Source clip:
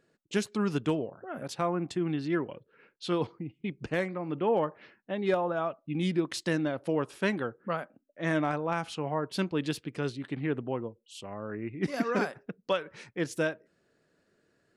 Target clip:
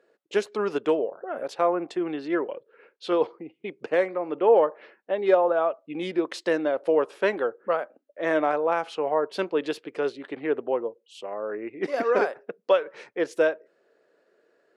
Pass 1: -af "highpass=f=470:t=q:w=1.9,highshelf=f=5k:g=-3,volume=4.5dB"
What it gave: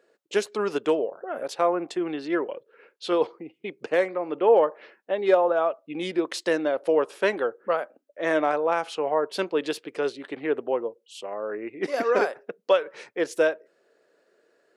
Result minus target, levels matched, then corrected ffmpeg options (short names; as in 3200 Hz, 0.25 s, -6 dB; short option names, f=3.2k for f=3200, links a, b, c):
8000 Hz band +6.5 dB
-af "highpass=f=470:t=q:w=1.9,highshelf=f=5k:g=-13,volume=4.5dB"